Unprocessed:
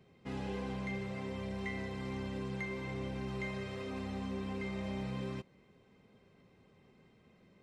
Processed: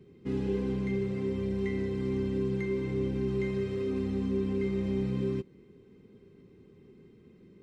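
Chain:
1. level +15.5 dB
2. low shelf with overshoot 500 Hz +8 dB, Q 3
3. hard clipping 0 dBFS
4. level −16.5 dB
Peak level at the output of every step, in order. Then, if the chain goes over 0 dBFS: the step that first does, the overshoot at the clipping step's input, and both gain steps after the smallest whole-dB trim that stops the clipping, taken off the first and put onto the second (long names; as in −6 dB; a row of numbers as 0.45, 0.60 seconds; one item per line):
−11.5, −3.5, −3.5, −20.0 dBFS
no step passes full scale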